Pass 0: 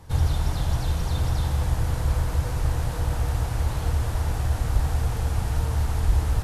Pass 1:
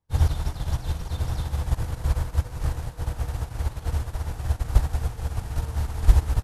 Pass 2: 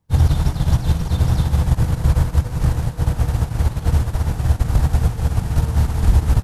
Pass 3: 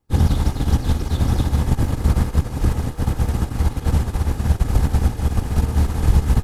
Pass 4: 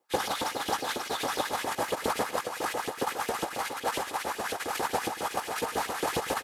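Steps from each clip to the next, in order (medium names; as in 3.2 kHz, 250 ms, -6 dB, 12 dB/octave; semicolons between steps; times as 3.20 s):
upward expansion 2.5:1, over -42 dBFS; trim +7.5 dB
peaking EQ 170 Hz +9 dB 1.4 oct; loudness maximiser +12 dB; trim -4.5 dB
comb filter that takes the minimum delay 2.4 ms
LFO high-pass saw up 7.3 Hz 380–3200 Hz; delay 99 ms -18 dB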